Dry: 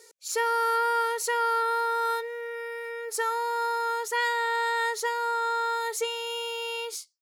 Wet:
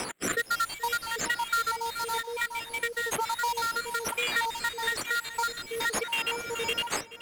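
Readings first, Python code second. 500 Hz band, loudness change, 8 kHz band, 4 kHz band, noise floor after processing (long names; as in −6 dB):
−6.5 dB, −2.0 dB, +2.0 dB, +3.0 dB, −46 dBFS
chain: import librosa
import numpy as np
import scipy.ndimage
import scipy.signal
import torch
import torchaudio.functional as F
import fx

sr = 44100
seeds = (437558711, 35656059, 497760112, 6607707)

p1 = fx.spec_dropout(x, sr, seeds[0], share_pct=70)
p2 = scipy.signal.sosfilt(scipy.signal.butter(2, 550.0, 'highpass', fs=sr, output='sos'), p1)
p3 = fx.tilt_shelf(p2, sr, db=-9.0, hz=800.0)
p4 = fx.sample_hold(p3, sr, seeds[1], rate_hz=5600.0, jitter_pct=20)
p5 = p3 + F.gain(torch.from_numpy(p4), -3.0).numpy()
p6 = fx.rotary(p5, sr, hz=1.1)
p7 = fx.wow_flutter(p6, sr, seeds[2], rate_hz=2.1, depth_cents=20.0)
p8 = p7 + fx.echo_feedback(p7, sr, ms=427, feedback_pct=27, wet_db=-17.5, dry=0)
y = fx.band_squash(p8, sr, depth_pct=100)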